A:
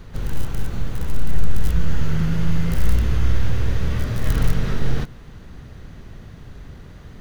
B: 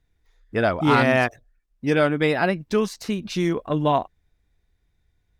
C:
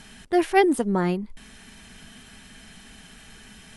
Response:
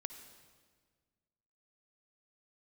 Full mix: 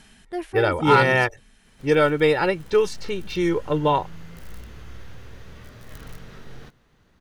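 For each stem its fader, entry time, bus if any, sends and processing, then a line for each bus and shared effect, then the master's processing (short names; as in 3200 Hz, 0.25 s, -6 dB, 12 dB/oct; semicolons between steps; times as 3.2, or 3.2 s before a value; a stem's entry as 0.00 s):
-13.5 dB, 1.65 s, no send, low shelf 220 Hz -10.5 dB
-0.5 dB, 0.00 s, no send, low-pass opened by the level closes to 2200 Hz, open at -16.5 dBFS; comb 2.2 ms, depth 80%
-4.5 dB, 0.00 s, no send, de-esser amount 70%; auto duck -7 dB, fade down 0.55 s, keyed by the second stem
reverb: off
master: dry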